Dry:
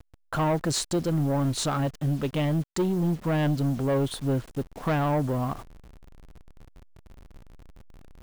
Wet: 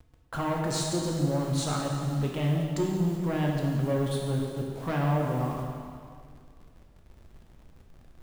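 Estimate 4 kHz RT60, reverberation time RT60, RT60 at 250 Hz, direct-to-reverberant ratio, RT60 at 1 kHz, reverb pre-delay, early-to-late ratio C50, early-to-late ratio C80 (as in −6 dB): 1.9 s, 2.1 s, 2.1 s, −1.0 dB, 2.0 s, 5 ms, 1.5 dB, 2.5 dB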